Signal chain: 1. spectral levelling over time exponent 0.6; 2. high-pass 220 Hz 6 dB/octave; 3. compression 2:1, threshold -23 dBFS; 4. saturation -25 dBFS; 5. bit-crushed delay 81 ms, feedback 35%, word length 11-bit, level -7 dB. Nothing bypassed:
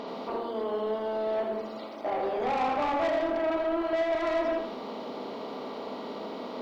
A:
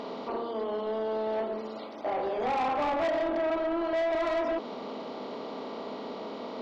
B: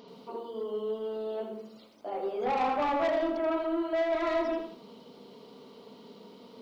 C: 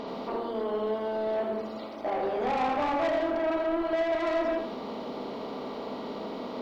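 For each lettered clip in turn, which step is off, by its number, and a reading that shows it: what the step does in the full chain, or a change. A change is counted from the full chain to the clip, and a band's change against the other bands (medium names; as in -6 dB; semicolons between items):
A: 5, crest factor change -3.5 dB; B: 1, 250 Hz band +1.5 dB; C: 2, 125 Hz band +2.5 dB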